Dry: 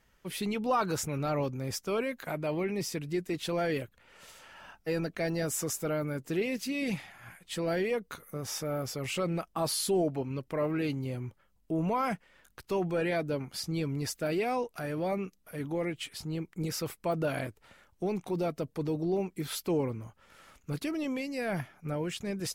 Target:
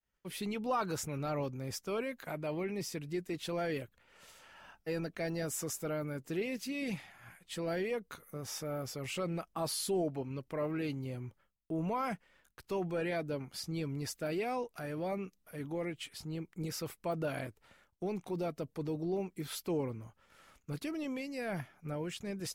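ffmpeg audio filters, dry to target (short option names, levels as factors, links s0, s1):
-af "agate=range=0.0224:threshold=0.00141:ratio=3:detection=peak,volume=0.562"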